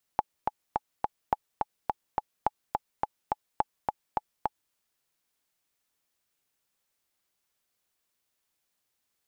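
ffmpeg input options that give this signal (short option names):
-f lavfi -i "aevalsrc='pow(10,(-10-3*gte(mod(t,4*60/211),60/211))/20)*sin(2*PI*849*mod(t,60/211))*exp(-6.91*mod(t,60/211)/0.03)':d=4.54:s=44100"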